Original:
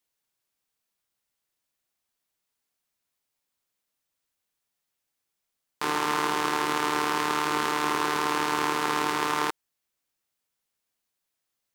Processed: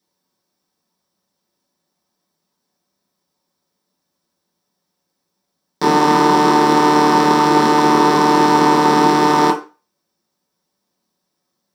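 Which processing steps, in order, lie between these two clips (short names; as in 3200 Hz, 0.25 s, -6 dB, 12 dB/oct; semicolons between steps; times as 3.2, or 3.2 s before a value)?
low shelf 440 Hz +5 dB; reverb RT60 0.35 s, pre-delay 3 ms, DRR -5 dB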